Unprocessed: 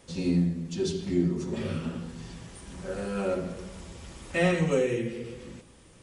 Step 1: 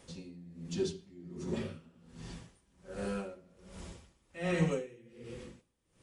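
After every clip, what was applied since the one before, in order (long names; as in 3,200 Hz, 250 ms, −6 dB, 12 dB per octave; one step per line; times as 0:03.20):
tremolo with a sine in dB 1.3 Hz, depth 25 dB
level −2.5 dB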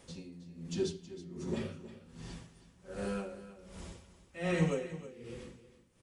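single-tap delay 319 ms −14.5 dB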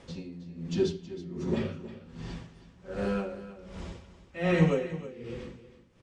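high-frequency loss of the air 120 metres
level +7 dB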